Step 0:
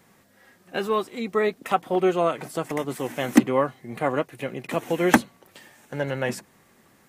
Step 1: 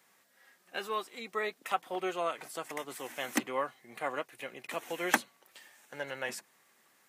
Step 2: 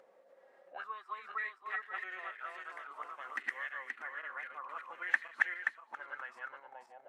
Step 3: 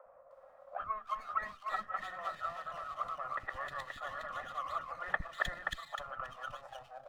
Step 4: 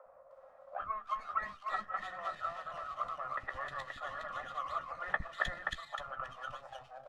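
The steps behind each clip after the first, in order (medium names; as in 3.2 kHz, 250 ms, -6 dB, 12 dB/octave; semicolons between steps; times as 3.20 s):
high-pass 1.2 kHz 6 dB/octave; trim -4.5 dB
backward echo that repeats 264 ms, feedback 54%, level 0 dB; auto-wah 530–1800 Hz, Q 7.7, up, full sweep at -29 dBFS; upward compressor, threshold -53 dBFS; trim +3.5 dB
comb filter that takes the minimum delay 1.6 ms; high-order bell 890 Hz +12 dB; three bands offset in time mids, lows, highs 60/310 ms, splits 320/2400 Hz; trim -3.5 dB
Bessel low-pass 7.9 kHz, order 2; doubling 15 ms -11 dB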